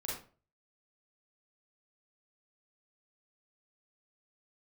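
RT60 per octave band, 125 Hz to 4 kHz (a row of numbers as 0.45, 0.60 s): 0.55, 0.40, 0.40, 0.35, 0.35, 0.25 s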